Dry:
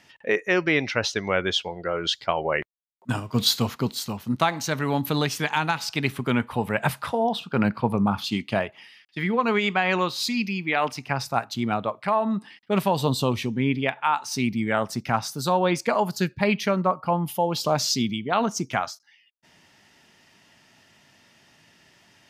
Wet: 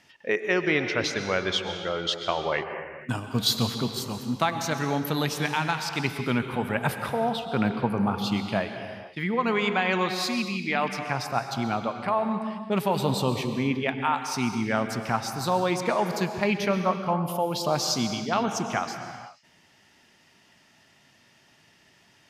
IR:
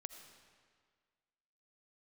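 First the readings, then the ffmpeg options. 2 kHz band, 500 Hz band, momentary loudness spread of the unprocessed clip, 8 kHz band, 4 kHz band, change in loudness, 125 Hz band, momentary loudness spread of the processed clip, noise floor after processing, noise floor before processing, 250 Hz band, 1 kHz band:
-2.0 dB, -2.0 dB, 6 LU, -2.0 dB, -2.0 dB, -2.0 dB, -2.0 dB, 6 LU, -60 dBFS, -59 dBFS, -2.0 dB, -2.0 dB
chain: -filter_complex "[1:a]atrim=start_sample=2205,afade=t=out:st=0.36:d=0.01,atrim=end_sample=16317,asetrate=27342,aresample=44100[a];[0:a][a]afir=irnorm=-1:irlink=0"

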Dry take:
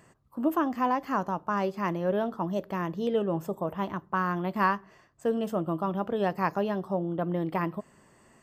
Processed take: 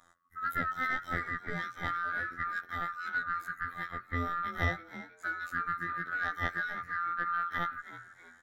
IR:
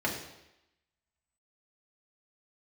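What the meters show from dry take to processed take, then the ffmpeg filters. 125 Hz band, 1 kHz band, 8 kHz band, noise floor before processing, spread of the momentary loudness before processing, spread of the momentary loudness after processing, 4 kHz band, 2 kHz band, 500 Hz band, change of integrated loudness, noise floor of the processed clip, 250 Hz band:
-7.0 dB, -4.0 dB, n/a, -61 dBFS, 6 LU, 8 LU, -1.5 dB, +5.5 dB, -18.0 dB, -4.5 dB, -61 dBFS, -16.5 dB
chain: -filter_complex "[0:a]afftfilt=real='real(if(lt(b,960),b+48*(1-2*mod(floor(b/48),2)),b),0)':imag='imag(if(lt(b,960),b+48*(1-2*mod(floor(b/48),2)),b),0)':win_size=2048:overlap=0.75,acontrast=82,afftfilt=real='hypot(re,im)*cos(PI*b)':imag='0':win_size=2048:overlap=0.75,aeval=exprs='0.631*(cos(1*acos(clip(val(0)/0.631,-1,1)))-cos(1*PI/2))+0.0224*(cos(2*acos(clip(val(0)/0.631,-1,1)))-cos(2*PI/2))+0.0178*(cos(3*acos(clip(val(0)/0.631,-1,1)))-cos(3*PI/2))+0.00355*(cos(7*acos(clip(val(0)/0.631,-1,1)))-cos(7*PI/2))':c=same,asplit=5[a][b][c][d][e];[b]adelay=322,afreqshift=120,volume=-15dB[f];[c]adelay=644,afreqshift=240,volume=-23dB[g];[d]adelay=966,afreqshift=360,volume=-30.9dB[h];[e]adelay=1288,afreqshift=480,volume=-38.9dB[i];[a][f][g][h][i]amix=inputs=5:normalize=0,volume=-8.5dB"

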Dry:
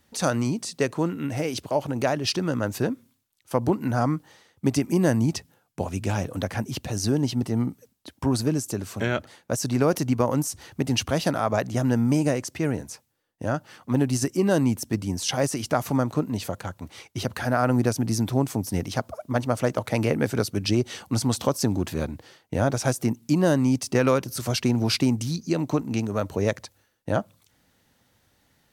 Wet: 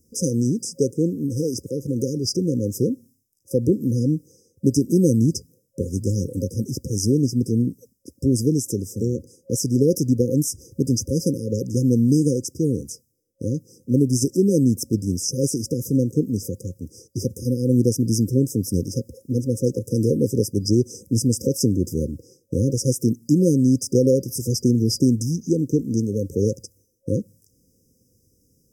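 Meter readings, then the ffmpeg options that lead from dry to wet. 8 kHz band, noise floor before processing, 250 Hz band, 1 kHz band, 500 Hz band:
+4.5 dB, -68 dBFS, +4.5 dB, under -40 dB, +2.5 dB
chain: -af "afftfilt=real='re*(1-between(b*sr/4096,540,4900))':imag='im*(1-between(b*sr/4096,540,4900))':win_size=4096:overlap=0.75,volume=4.5dB"

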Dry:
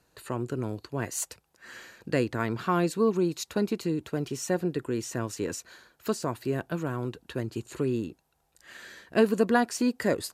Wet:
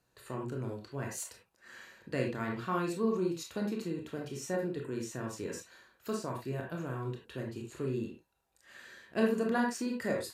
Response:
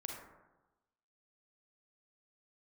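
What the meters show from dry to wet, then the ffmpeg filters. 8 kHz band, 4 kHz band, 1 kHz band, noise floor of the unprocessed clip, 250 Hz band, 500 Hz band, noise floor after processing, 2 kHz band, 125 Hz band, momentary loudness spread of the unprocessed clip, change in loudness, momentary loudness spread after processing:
-8.0 dB, -7.5 dB, -6.5 dB, -72 dBFS, -6.0 dB, -6.5 dB, -75 dBFS, -5.5 dB, -6.0 dB, 15 LU, -6.5 dB, 15 LU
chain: -filter_complex "[1:a]atrim=start_sample=2205,afade=t=out:st=0.23:d=0.01,atrim=end_sample=10584,asetrate=74970,aresample=44100[a];[0:a][a]afir=irnorm=-1:irlink=0"

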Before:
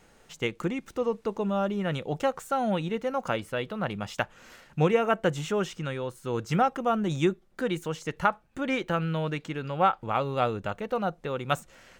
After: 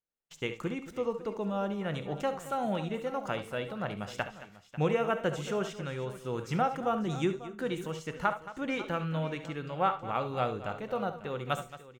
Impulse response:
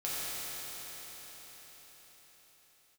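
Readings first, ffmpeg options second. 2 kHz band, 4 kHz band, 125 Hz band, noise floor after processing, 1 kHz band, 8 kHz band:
-4.5 dB, -4.5 dB, -4.5 dB, -55 dBFS, -4.5 dB, -4.5 dB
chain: -filter_complex "[0:a]agate=range=-37dB:threshold=-48dB:ratio=16:detection=peak,aecho=1:1:69|222|544:0.224|0.168|0.158,asplit=2[a][b];[1:a]atrim=start_sample=2205,atrim=end_sample=3528,asetrate=38808,aresample=44100[c];[b][c]afir=irnorm=-1:irlink=0,volume=-10dB[d];[a][d]amix=inputs=2:normalize=0,volume=-7dB"

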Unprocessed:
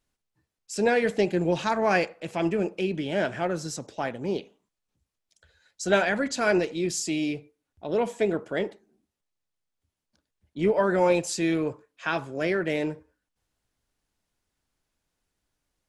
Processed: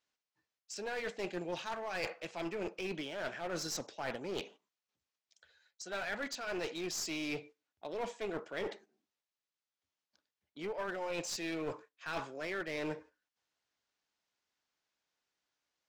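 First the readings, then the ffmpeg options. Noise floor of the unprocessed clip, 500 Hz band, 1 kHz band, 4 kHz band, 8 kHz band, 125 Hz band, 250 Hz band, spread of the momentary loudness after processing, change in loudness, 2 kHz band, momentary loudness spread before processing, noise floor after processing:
-84 dBFS, -14.5 dB, -13.0 dB, -6.5 dB, -8.0 dB, -16.5 dB, -15.0 dB, 6 LU, -13.0 dB, -11.0 dB, 10 LU, under -85 dBFS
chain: -af "lowpass=f=6.6k:w=0.5412,lowpass=f=6.6k:w=1.3066,agate=range=-9dB:threshold=-50dB:ratio=16:detection=peak,highpass=f=860:p=1,areverse,acompressor=threshold=-41dB:ratio=12,areverse,aeval=exprs='clip(val(0),-1,0.00596)':c=same,volume=7dB"

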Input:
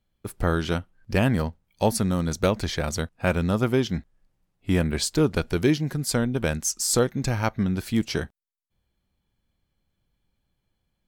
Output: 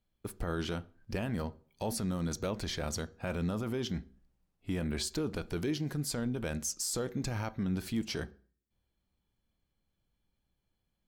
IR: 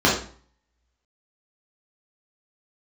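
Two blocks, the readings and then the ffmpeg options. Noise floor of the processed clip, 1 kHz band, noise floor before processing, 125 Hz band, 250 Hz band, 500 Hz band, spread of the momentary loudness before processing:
-83 dBFS, -12.5 dB, -78 dBFS, -11.0 dB, -10.0 dB, -12.0 dB, 7 LU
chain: -filter_complex "[0:a]alimiter=limit=-19.5dB:level=0:latency=1:release=24,asplit=2[a][b];[1:a]atrim=start_sample=2205[c];[b][c]afir=irnorm=-1:irlink=0,volume=-36dB[d];[a][d]amix=inputs=2:normalize=0,volume=-6dB"

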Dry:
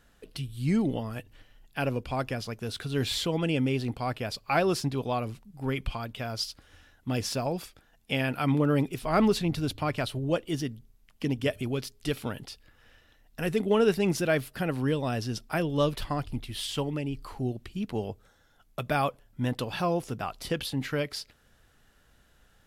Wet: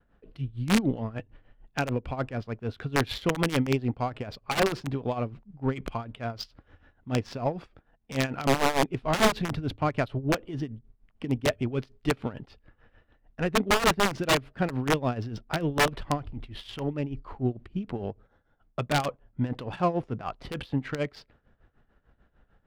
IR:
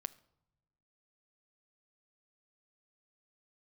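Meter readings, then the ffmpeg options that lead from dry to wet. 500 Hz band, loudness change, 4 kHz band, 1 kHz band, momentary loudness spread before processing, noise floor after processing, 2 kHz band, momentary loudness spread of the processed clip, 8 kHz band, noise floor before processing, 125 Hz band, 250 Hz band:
-0.5 dB, +1.0 dB, +1.0 dB, +3.0 dB, 13 LU, -68 dBFS, +3.5 dB, 13 LU, +2.5 dB, -63 dBFS, 0.0 dB, -0.5 dB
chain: -af "agate=range=-33dB:threshold=-59dB:ratio=3:detection=peak,highshelf=f=3.2k:g=-4.5,aeval=exprs='(mod(8.41*val(0)+1,2)-1)/8.41':c=same,adynamicsmooth=sensitivity=3.5:basefreq=1.9k,tremolo=f=6.7:d=0.79,volume=5dB"

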